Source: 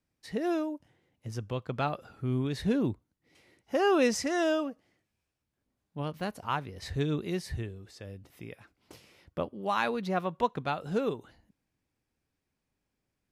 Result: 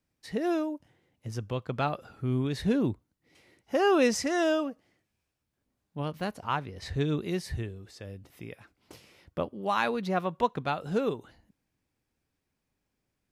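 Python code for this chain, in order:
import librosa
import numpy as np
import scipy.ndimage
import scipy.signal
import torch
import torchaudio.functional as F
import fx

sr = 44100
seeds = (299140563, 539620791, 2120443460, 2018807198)

y = fx.high_shelf(x, sr, hz=11000.0, db=-10.0, at=(6.33, 7.07))
y = y * librosa.db_to_amplitude(1.5)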